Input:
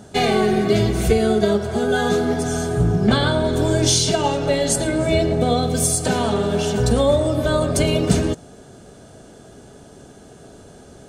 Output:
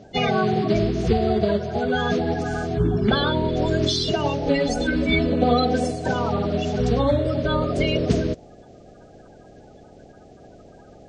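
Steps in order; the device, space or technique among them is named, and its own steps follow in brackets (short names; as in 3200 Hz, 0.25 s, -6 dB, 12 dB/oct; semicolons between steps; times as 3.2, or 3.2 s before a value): clip after many re-uploads (LPF 5000 Hz 24 dB/oct; bin magnitudes rounded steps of 30 dB); 4.46–5.91 comb 4 ms, depth 93%; gain -2.5 dB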